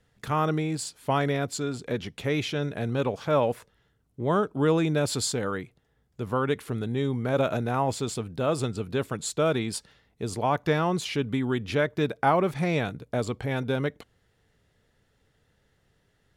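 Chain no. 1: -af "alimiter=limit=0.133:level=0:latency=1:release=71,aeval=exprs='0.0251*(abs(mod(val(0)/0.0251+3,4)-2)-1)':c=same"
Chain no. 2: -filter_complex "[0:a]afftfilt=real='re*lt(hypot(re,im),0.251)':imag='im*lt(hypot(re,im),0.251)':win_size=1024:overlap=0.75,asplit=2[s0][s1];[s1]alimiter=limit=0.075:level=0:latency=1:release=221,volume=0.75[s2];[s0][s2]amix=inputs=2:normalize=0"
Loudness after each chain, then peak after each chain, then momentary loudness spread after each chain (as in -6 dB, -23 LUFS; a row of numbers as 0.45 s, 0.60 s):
-37.5 LUFS, -29.0 LUFS; -32.0 dBFS, -12.5 dBFS; 5 LU, 4 LU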